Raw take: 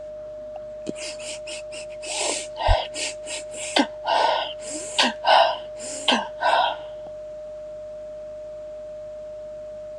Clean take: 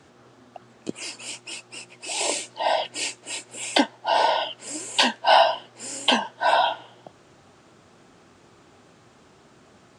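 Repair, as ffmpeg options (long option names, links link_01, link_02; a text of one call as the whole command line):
ffmpeg -i in.wav -filter_complex "[0:a]bandreject=frequency=49.9:width_type=h:width=4,bandreject=frequency=99.8:width_type=h:width=4,bandreject=frequency=149.7:width_type=h:width=4,bandreject=frequency=199.6:width_type=h:width=4,bandreject=frequency=610:width=30,asplit=3[link_01][link_02][link_03];[link_01]afade=type=out:start_time=2.67:duration=0.02[link_04];[link_02]highpass=frequency=140:width=0.5412,highpass=frequency=140:width=1.3066,afade=type=in:start_time=2.67:duration=0.02,afade=type=out:start_time=2.79:duration=0.02[link_05];[link_03]afade=type=in:start_time=2.79:duration=0.02[link_06];[link_04][link_05][link_06]amix=inputs=3:normalize=0" out.wav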